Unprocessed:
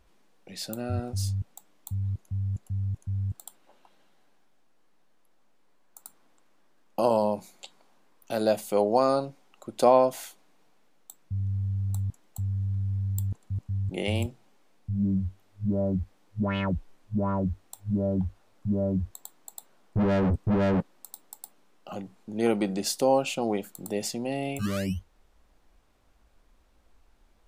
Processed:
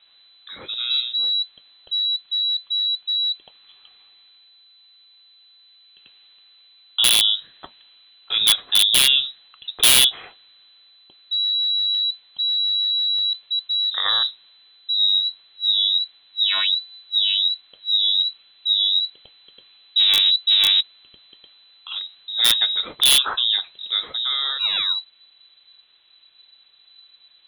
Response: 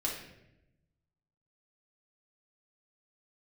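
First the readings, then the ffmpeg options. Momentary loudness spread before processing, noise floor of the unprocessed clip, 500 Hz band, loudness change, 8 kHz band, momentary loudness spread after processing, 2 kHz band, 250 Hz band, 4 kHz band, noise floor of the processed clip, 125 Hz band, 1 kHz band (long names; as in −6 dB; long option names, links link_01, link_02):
18 LU, −62 dBFS, −18.5 dB, +11.0 dB, +15.5 dB, 13 LU, +12.0 dB, below −20 dB, +28.5 dB, −55 dBFS, below −20 dB, −5.0 dB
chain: -af "highshelf=frequency=2600:gain=4,lowpass=frequency=3400:width_type=q:width=0.5098,lowpass=frequency=3400:width_type=q:width=0.6013,lowpass=frequency=3400:width_type=q:width=0.9,lowpass=frequency=3400:width_type=q:width=2.563,afreqshift=-4000,aeval=exprs='(mod(4.73*val(0)+1,2)-1)/4.73':channel_layout=same,volume=7dB"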